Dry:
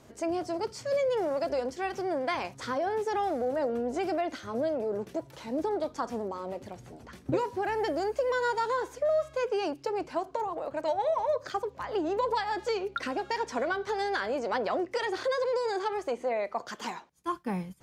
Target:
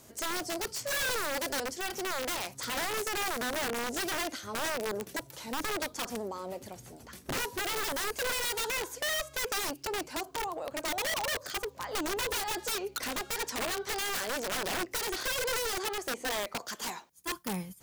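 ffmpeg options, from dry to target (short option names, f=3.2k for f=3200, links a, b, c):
-af "aemphasis=mode=production:type=75fm,aeval=exprs='(mod(18.8*val(0)+1,2)-1)/18.8':c=same,volume=-2dB"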